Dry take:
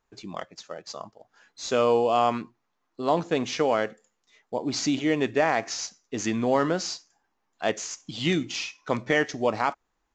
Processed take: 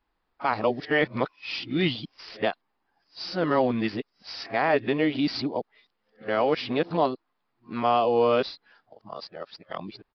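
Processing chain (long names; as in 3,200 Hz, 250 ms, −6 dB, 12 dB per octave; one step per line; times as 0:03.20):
played backwards from end to start
downsampling to 11,025 Hz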